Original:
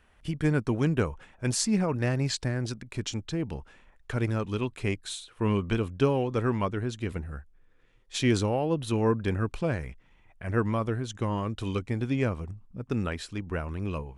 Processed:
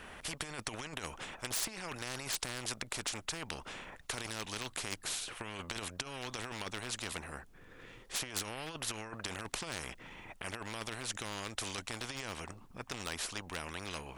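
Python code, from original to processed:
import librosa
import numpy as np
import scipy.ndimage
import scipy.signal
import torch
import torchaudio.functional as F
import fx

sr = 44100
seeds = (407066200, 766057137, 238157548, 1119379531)

y = fx.over_compress(x, sr, threshold_db=-28.0, ratio=-0.5)
y = np.clip(10.0 ** (20.5 / 20.0) * y, -1.0, 1.0) / 10.0 ** (20.5 / 20.0)
y = fx.spectral_comp(y, sr, ratio=4.0)
y = y * 10.0 ** (5.5 / 20.0)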